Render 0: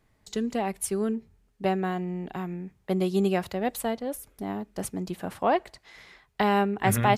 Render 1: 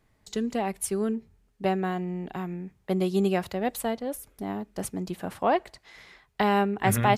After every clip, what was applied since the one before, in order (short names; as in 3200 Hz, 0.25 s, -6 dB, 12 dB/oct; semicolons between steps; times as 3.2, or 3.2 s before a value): nothing audible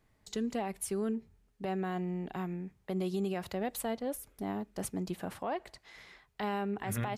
compressor, threshold -24 dBFS, peak gain reduction 8.5 dB; limiter -22 dBFS, peak gain reduction 9.5 dB; gain -3.5 dB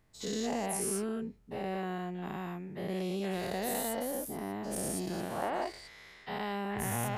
spectral dilation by 0.24 s; gain -5 dB